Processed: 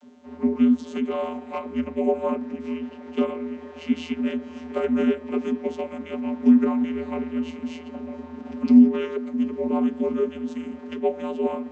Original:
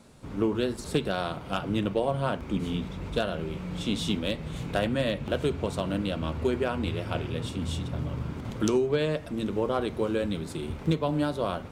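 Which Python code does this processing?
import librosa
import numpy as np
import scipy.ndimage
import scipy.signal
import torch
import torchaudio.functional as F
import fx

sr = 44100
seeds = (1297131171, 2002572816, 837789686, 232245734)

y = fx.formant_shift(x, sr, semitones=-4)
y = fx.vocoder(y, sr, bands=32, carrier='square', carrier_hz=82.1)
y = y + 10.0 ** (-22.5 / 20.0) * np.pad(y, (int(446 * sr / 1000.0), 0))[:len(y)]
y = F.gain(torch.from_numpy(y), 6.5).numpy()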